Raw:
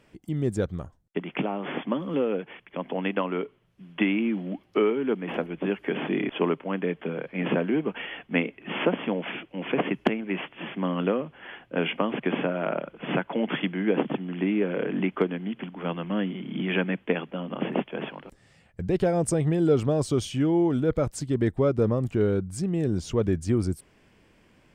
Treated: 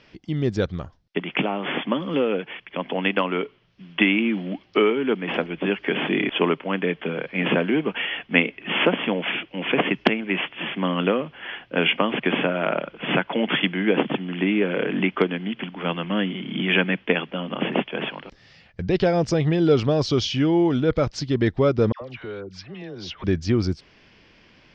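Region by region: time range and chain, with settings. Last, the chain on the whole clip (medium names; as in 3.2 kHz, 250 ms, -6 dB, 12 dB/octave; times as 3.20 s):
21.92–23.24 s: three-band isolator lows -12 dB, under 490 Hz, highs -20 dB, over 4.6 kHz + compression 2:1, threshold -39 dBFS + phase dispersion lows, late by 94 ms, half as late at 1.1 kHz
whole clip: steep low-pass 5.5 kHz 48 dB/octave; treble shelf 2.1 kHz +12 dB; trim +3 dB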